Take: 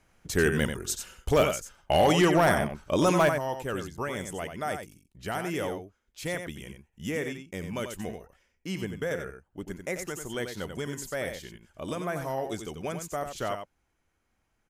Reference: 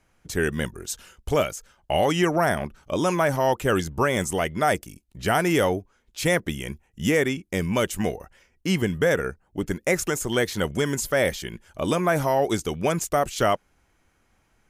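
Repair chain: clip repair -14.5 dBFS; inverse comb 90 ms -7.5 dB; trim 0 dB, from 3.29 s +11 dB

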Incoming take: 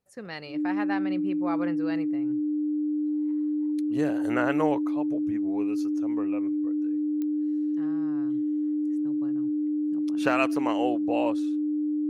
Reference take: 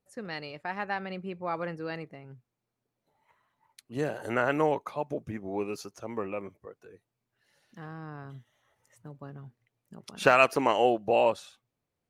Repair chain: de-click; band-stop 300 Hz, Q 30; gain correction +4.5 dB, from 4.82 s

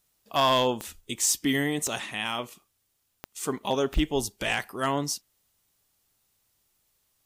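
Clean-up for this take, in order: clip repair -15.5 dBFS; de-click

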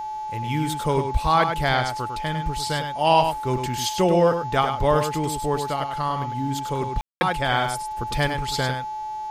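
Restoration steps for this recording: de-hum 386 Hz, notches 18; band-stop 860 Hz, Q 30; room tone fill 7.01–7.21 s; inverse comb 101 ms -7 dB

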